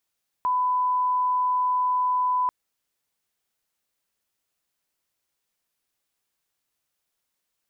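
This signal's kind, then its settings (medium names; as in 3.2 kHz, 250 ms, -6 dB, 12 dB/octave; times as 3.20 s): line-up tone -20 dBFS 2.04 s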